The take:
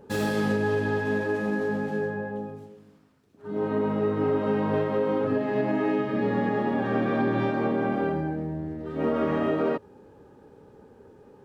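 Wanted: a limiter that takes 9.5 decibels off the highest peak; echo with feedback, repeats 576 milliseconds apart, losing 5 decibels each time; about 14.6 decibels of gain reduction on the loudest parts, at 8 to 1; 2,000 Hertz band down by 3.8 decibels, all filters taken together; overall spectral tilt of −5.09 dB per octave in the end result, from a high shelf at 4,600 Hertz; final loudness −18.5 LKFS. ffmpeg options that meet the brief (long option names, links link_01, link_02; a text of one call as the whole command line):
ffmpeg -i in.wav -af "equalizer=frequency=2000:width_type=o:gain=-4.5,highshelf=frequency=4600:gain=-3,acompressor=threshold=-37dB:ratio=8,alimiter=level_in=11.5dB:limit=-24dB:level=0:latency=1,volume=-11.5dB,aecho=1:1:576|1152|1728|2304|2880|3456|4032:0.562|0.315|0.176|0.0988|0.0553|0.031|0.0173,volume=24.5dB" out.wav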